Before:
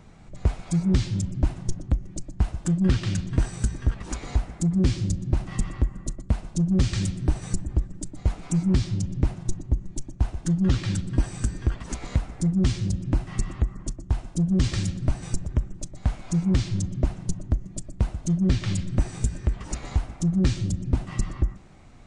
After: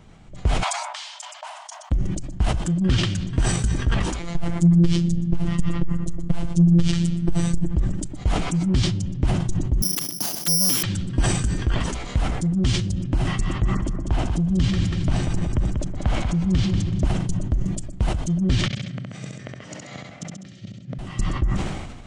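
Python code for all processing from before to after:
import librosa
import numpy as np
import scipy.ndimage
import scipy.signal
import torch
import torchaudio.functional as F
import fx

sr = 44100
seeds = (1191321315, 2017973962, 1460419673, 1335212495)

y = fx.chain(x, sr, fx.brickwall_highpass(low_hz=590.0),
    fx.peak_eq(hz=970.0, db=8.5, octaves=0.42), at=(0.63, 1.91))
y = fx.chain(y, sr, fx.low_shelf(hz=330.0, db=9.5),
    fx.robotise(hz=171.0),
    fx.transformer_sat(knee_hz=41.0), at=(4.19, 7.76))
y = fx.chain(y, sr, fx.steep_highpass(hz=160.0, slope=36),
    fx.resample_bad(factor=8, down='none', up='zero_stuff'),
    fx.clip_hard(threshold_db=-8.5), at=(9.82, 10.83))
y = fx.chain(y, sr, fx.lowpass(hz=3400.0, slope=6),
    fx.echo_feedback(ms=189, feedback_pct=26, wet_db=-6.0),
    fx.band_squash(depth_pct=70), at=(13.63, 17.03))
y = fx.chain(y, sr, fx.gate_flip(shuts_db=-18.0, range_db=-29),
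    fx.cabinet(low_hz=120.0, low_slope=24, high_hz=7100.0, hz=(360.0, 620.0, 910.0, 2000.0), db=(-7, 7, -9, 6)),
    fx.echo_feedback(ms=67, feedback_pct=44, wet_db=-4), at=(18.66, 20.99))
y = fx.peak_eq(y, sr, hz=3100.0, db=7.0, octaves=0.24)
y = fx.sustainer(y, sr, db_per_s=41.0)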